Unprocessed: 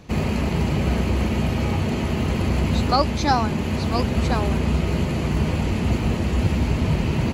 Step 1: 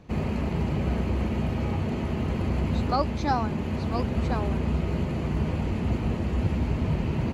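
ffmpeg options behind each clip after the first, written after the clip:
-af "highshelf=f=2.9k:g=-10,volume=-5dB"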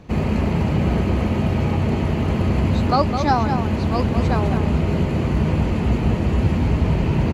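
-filter_complex "[0:a]asplit=2[a][b];[b]adelay=209.9,volume=-7dB,highshelf=f=4k:g=-4.72[c];[a][c]amix=inputs=2:normalize=0,volume=7dB"

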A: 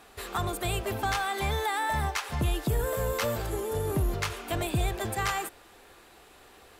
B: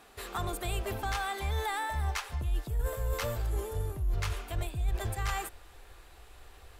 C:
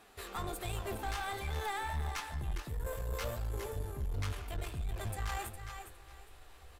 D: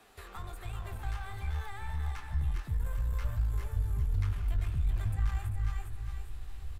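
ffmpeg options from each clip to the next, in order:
-af "asubboost=boost=10:cutoff=69,areverse,acompressor=threshold=-25dB:ratio=6,areverse,volume=-3dB"
-af "aecho=1:1:410|820|1230:0.335|0.077|0.0177,flanger=delay=9.3:depth=6:regen=55:speed=1.4:shape=sinusoidal,aeval=exprs='(tanh(44.7*val(0)+0.4)-tanh(0.4))/44.7':c=same,volume=2dB"
-filter_complex "[0:a]acrossover=split=140|880|2100[a][b][c][d];[a]acompressor=threshold=-43dB:ratio=4[e];[b]acompressor=threshold=-55dB:ratio=4[f];[c]acompressor=threshold=-46dB:ratio=4[g];[d]acompressor=threshold=-58dB:ratio=4[h];[e][f][g][h]amix=inputs=4:normalize=0,aecho=1:1:390:0.355,asubboost=boost=6.5:cutoff=190"

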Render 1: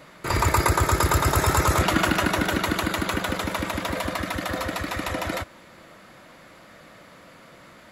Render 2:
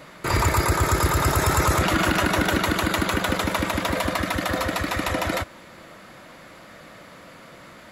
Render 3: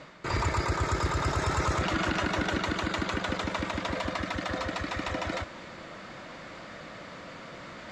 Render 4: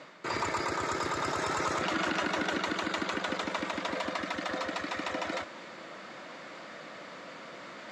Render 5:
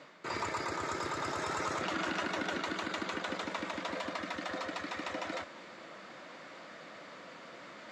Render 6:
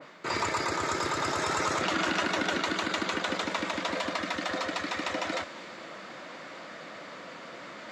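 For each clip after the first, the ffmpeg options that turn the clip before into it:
-af "alimiter=limit=-14dB:level=0:latency=1:release=41,volume=3.5dB"
-af "lowpass=f=6.8k:w=0.5412,lowpass=f=6.8k:w=1.3066,areverse,acompressor=mode=upward:threshold=-26dB:ratio=2.5,areverse,volume=-7.5dB"
-af "highpass=230,volume=-1dB"
-af "flanger=delay=6.5:depth=7:regen=-66:speed=1.7:shape=triangular"
-af "adynamicequalizer=threshold=0.00447:dfrequency=2400:dqfactor=0.7:tfrequency=2400:tqfactor=0.7:attack=5:release=100:ratio=0.375:range=1.5:mode=boostabove:tftype=highshelf,volume=6dB"

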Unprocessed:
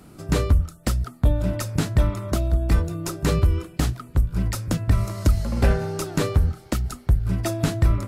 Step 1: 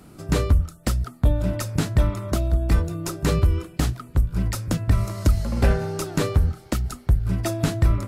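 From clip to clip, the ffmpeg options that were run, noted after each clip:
-af anull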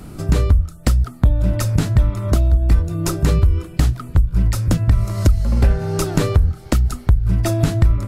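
-af "lowshelf=f=100:g=11.5,acompressor=threshold=-22dB:ratio=3,volume=8dB"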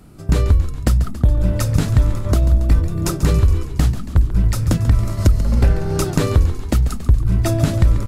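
-filter_complex "[0:a]agate=range=-9dB:threshold=-22dB:ratio=16:detection=peak,asplit=2[a][b];[b]asplit=8[c][d][e][f][g][h][i][j];[c]adelay=139,afreqshift=-65,volume=-12dB[k];[d]adelay=278,afreqshift=-130,volume=-15.7dB[l];[e]adelay=417,afreqshift=-195,volume=-19.5dB[m];[f]adelay=556,afreqshift=-260,volume=-23.2dB[n];[g]adelay=695,afreqshift=-325,volume=-27dB[o];[h]adelay=834,afreqshift=-390,volume=-30.7dB[p];[i]adelay=973,afreqshift=-455,volume=-34.5dB[q];[j]adelay=1112,afreqshift=-520,volume=-38.2dB[r];[k][l][m][n][o][p][q][r]amix=inputs=8:normalize=0[s];[a][s]amix=inputs=2:normalize=0"

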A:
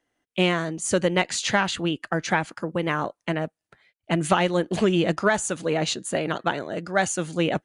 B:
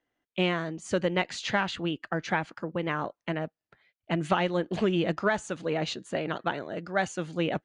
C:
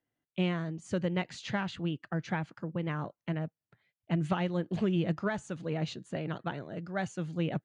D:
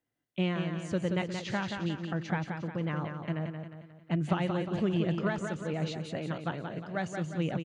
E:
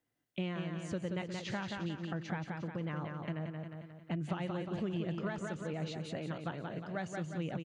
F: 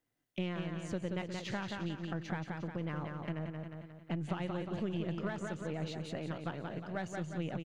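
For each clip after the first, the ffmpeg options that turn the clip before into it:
-af "lowpass=4.5k,volume=-5dB"
-af "equalizer=f=130:w=0.88:g=12.5,volume=-8.5dB"
-af "aecho=1:1:178|356|534|712|890|1068:0.501|0.231|0.106|0.0488|0.0224|0.0103"
-af "acompressor=threshold=-41dB:ratio=2,volume=1dB"
-af "aeval=exprs='if(lt(val(0),0),0.708*val(0),val(0))':c=same,volume=1dB"

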